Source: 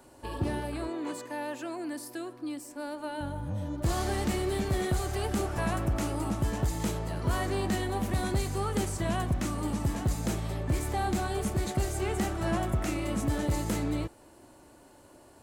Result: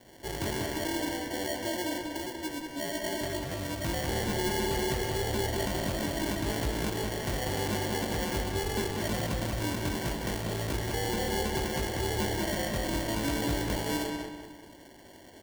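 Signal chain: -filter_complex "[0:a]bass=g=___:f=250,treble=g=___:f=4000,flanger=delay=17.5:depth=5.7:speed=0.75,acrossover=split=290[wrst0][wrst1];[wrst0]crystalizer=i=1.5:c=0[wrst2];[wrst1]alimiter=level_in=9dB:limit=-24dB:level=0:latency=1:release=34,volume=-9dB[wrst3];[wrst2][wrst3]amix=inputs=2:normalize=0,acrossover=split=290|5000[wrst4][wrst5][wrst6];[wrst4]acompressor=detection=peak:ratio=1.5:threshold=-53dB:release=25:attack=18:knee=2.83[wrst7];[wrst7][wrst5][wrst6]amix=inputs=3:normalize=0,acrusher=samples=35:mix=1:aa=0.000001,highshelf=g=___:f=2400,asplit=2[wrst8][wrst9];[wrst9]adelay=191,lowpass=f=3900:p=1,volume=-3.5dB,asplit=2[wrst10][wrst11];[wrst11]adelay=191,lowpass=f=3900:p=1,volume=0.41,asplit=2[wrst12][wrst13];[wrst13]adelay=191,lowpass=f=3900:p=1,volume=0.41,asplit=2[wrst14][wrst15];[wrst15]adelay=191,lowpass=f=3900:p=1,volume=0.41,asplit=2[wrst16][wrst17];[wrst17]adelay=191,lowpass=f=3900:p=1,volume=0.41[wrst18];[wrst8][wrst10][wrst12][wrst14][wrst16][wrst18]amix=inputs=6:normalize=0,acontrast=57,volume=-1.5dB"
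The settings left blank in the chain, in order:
-3, -6, 7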